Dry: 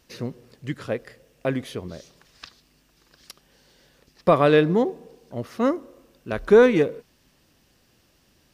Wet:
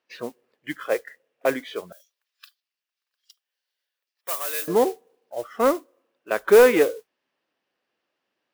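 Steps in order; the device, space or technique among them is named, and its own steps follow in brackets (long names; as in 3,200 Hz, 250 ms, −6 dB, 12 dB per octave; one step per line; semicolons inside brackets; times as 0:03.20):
noise reduction from a noise print of the clip's start 18 dB
carbon microphone (band-pass filter 450–2,800 Hz; soft clipping −12.5 dBFS, distortion −15 dB; noise that follows the level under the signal 19 dB)
0:01.92–0:04.68: first difference
level +6.5 dB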